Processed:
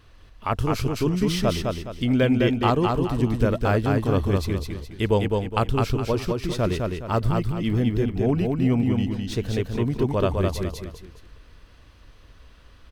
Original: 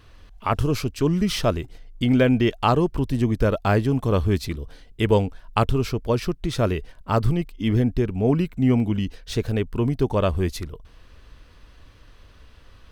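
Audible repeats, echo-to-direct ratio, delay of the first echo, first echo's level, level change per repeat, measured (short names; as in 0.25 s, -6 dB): 3, -3.0 dB, 0.208 s, -3.5 dB, -9.0 dB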